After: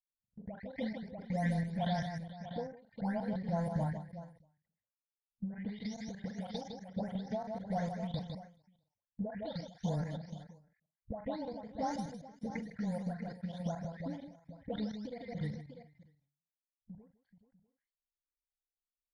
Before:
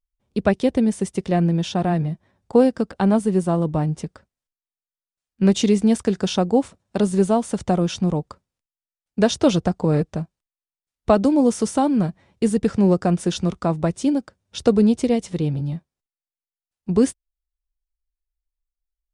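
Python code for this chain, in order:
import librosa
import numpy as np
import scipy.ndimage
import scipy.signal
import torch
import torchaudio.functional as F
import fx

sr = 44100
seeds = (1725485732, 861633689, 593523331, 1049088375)

y = fx.spec_delay(x, sr, highs='late', ms=455)
y = fx.env_lowpass(y, sr, base_hz=330.0, full_db=-15.5)
y = fx.peak_eq(y, sr, hz=2000.0, db=11.0, octaves=0.5)
y = fx.transient(y, sr, attack_db=3, sustain_db=-11)
y = fx.level_steps(y, sr, step_db=24)
y = fx.fixed_phaser(y, sr, hz=1800.0, stages=8)
y = fx.echo_multitap(y, sr, ms=(42, 156, 430, 645, 693), db=(-13.5, -7.5, -16.0, -11.0, -19.5))
y = fx.end_taper(y, sr, db_per_s=110.0)
y = y * 10.0 ** (-6.0 / 20.0)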